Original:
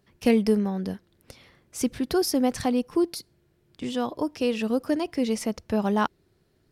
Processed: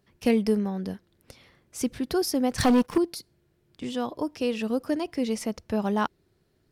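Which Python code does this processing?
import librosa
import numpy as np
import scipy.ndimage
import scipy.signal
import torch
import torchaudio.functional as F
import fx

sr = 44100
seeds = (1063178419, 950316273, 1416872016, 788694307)

y = fx.leveller(x, sr, passes=3, at=(2.58, 2.98))
y = F.gain(torch.from_numpy(y), -2.0).numpy()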